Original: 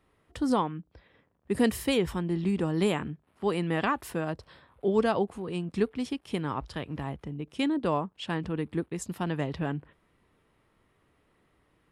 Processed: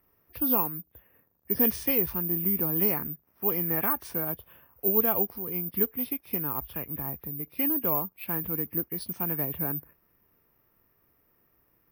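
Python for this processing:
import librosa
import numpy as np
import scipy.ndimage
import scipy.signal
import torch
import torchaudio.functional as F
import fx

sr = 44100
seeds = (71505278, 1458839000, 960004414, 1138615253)

y = fx.freq_compress(x, sr, knee_hz=1600.0, ratio=1.5)
y = (np.kron(scipy.signal.resample_poly(y, 1, 3), np.eye(3)[0]) * 3)[:len(y)]
y = y * librosa.db_to_amplitude(-4.0)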